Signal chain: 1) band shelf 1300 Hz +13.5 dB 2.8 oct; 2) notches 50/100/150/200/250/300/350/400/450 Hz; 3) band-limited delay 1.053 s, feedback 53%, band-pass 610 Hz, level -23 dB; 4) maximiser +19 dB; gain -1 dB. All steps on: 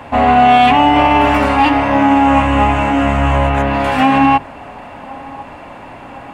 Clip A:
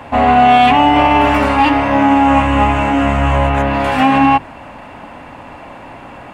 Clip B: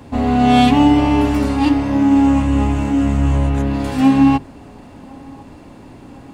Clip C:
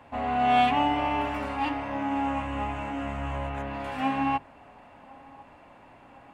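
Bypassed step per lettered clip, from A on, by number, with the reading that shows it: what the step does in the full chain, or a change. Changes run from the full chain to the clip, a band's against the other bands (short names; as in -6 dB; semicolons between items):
3, momentary loudness spread change -16 LU; 1, 250 Hz band +9.0 dB; 4, crest factor change +7.5 dB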